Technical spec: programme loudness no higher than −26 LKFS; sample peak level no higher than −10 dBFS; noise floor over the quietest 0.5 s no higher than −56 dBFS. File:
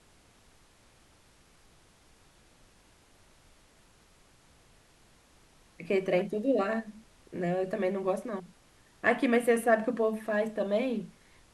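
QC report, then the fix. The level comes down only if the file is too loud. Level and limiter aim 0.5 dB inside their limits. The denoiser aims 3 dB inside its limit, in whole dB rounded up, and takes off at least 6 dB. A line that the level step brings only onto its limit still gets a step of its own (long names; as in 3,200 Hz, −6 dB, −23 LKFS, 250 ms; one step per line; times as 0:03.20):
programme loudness −29.5 LKFS: in spec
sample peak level −12.5 dBFS: in spec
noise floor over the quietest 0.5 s −61 dBFS: in spec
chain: no processing needed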